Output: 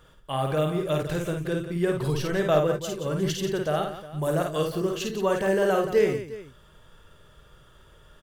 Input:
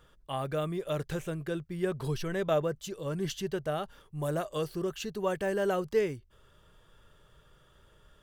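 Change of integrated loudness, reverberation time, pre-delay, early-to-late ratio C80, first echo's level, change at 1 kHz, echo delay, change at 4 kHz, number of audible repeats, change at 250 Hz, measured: +7.0 dB, no reverb, no reverb, no reverb, -4.0 dB, +7.0 dB, 52 ms, +7.0 dB, 3, +7.0 dB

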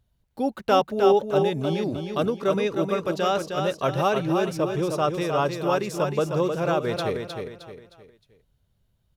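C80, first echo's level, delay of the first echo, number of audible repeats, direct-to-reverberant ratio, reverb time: no reverb, -5.5 dB, 310 ms, 4, no reverb, no reverb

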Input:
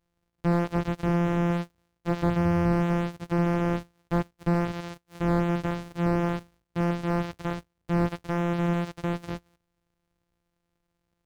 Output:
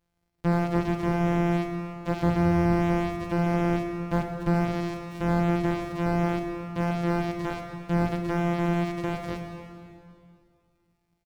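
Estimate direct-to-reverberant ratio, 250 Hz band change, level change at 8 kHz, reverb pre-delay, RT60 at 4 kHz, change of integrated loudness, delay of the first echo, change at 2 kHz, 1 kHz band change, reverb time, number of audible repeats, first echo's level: 4.0 dB, +1.0 dB, no reading, 17 ms, 2.2 s, +0.5 dB, 287 ms, +1.5 dB, +2.0 dB, 2.5 s, 1, -18.5 dB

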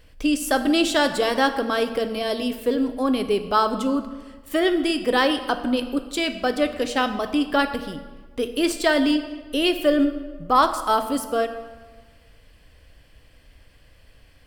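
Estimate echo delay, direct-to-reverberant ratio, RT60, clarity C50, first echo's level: no echo, 8.0 dB, 1.4 s, 10.5 dB, no echo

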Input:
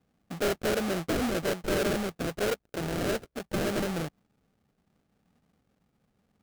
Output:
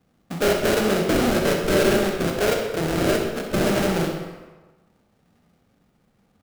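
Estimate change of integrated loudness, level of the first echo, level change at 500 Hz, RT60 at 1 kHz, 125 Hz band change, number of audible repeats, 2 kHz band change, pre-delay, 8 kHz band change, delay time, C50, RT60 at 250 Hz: +9.0 dB, -10.0 dB, +9.5 dB, 1.3 s, +8.5 dB, 1, +8.5 dB, 24 ms, +8.0 dB, 64 ms, 3.0 dB, 1.1 s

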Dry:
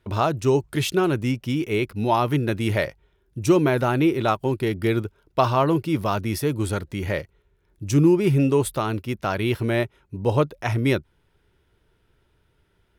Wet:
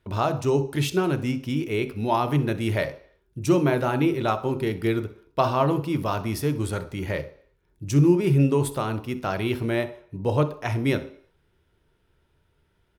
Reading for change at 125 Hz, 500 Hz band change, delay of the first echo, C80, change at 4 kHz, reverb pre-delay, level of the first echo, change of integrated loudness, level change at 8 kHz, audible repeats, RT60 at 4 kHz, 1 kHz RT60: -1.0 dB, -2.0 dB, 64 ms, 17.5 dB, -3.0 dB, 19 ms, -18.0 dB, -2.0 dB, -3.0 dB, 1, 0.60 s, 0.55 s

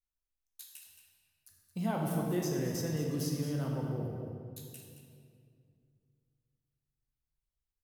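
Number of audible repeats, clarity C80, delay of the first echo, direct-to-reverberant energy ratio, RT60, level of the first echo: 1, 2.0 dB, 222 ms, -1.5 dB, 2.3 s, -11.0 dB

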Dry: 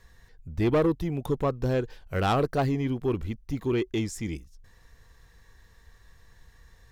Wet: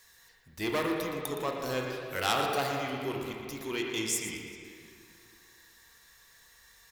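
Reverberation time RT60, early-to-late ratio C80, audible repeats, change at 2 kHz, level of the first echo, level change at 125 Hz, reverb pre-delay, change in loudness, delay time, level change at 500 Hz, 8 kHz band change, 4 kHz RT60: 2.4 s, 2.0 dB, 1, +3.0 dB, -10.5 dB, -13.5 dB, 25 ms, -4.5 dB, 117 ms, -6.0 dB, +9.5 dB, 1.9 s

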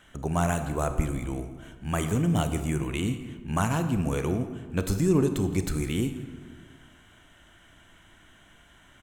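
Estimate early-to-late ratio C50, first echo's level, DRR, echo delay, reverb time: 9.0 dB, -18.0 dB, 8.0 dB, 167 ms, 1.6 s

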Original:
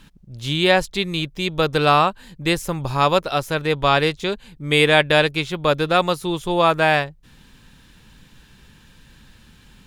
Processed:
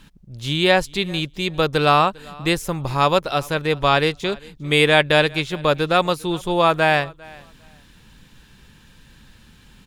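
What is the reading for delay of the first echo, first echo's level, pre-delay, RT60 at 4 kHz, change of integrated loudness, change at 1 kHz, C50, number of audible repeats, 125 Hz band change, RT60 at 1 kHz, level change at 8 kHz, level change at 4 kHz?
400 ms, -24.0 dB, no reverb, no reverb, 0.0 dB, 0.0 dB, no reverb, 1, 0.0 dB, no reverb, 0.0 dB, 0.0 dB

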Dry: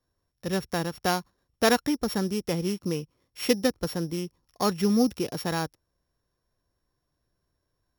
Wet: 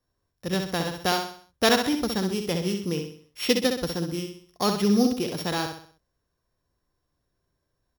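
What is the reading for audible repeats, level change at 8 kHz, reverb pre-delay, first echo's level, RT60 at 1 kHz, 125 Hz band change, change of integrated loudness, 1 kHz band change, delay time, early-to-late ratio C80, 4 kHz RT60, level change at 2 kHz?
4, +1.5 dB, no reverb, -6.0 dB, no reverb, +1.0 dB, +2.0 dB, +1.5 dB, 64 ms, no reverb, no reverb, +2.5 dB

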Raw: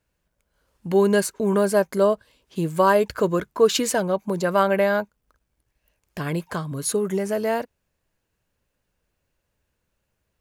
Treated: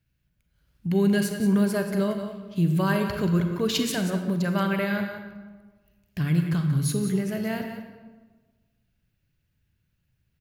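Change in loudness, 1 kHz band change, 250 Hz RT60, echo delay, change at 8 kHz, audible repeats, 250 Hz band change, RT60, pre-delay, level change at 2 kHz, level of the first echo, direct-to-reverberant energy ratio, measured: -3.0 dB, -9.5 dB, 1.5 s, 181 ms, -6.0 dB, 1, +2.5 dB, 1.4 s, 33 ms, -3.0 dB, -10.0 dB, 4.5 dB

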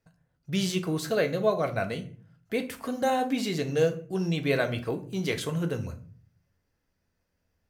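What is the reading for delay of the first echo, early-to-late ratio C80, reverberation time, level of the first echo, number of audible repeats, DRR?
no echo, 18.5 dB, 0.45 s, no echo, no echo, 6.0 dB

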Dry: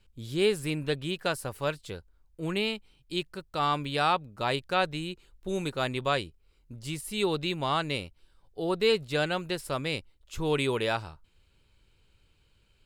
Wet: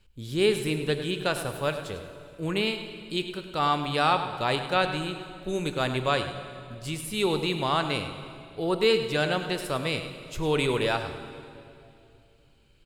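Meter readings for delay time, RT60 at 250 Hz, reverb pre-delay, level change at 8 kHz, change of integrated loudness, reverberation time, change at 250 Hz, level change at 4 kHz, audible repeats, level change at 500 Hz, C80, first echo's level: 102 ms, 3.2 s, 20 ms, +2.5 dB, +2.5 dB, 2.6 s, +3.0 dB, +2.5 dB, 1, +2.5 dB, 8.0 dB, -12.0 dB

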